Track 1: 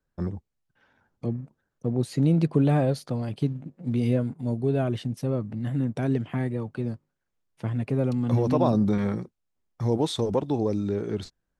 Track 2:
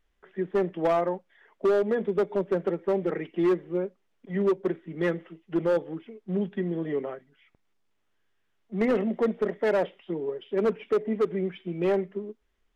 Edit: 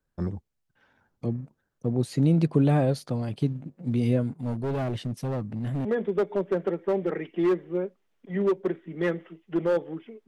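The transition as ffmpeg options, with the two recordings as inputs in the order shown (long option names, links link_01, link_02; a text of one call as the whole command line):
ffmpeg -i cue0.wav -i cue1.wav -filter_complex "[0:a]asettb=1/sr,asplit=3[link_01][link_02][link_03];[link_01]atrim=end=4.374[link_04];[link_02]atrim=start=4.37:end=5.85,asetpts=PTS-STARTPTS,afade=type=in:duration=0.004:curve=qsin,afade=type=out:start_time=1.476:duration=0.004:curve=qsin,volume=25.5dB,asoftclip=hard,volume=-25.5dB[link_05];[link_03]atrim=start=5.846[link_06];[link_04][link_05]acrossfade=duration=0.004:curve1=hsin:curve2=qsin[link_07];[link_07][link_06]acrossfade=duration=0.004:curve1=qsin:curve2=hsin,apad=whole_dur=10.27,atrim=end=10.27,atrim=end=5.852[link_08];[1:a]atrim=start=1.848:end=6.27[link_09];[link_08][link_09]acrossfade=duration=0.004:curve1=hsin:curve2=hsin" out.wav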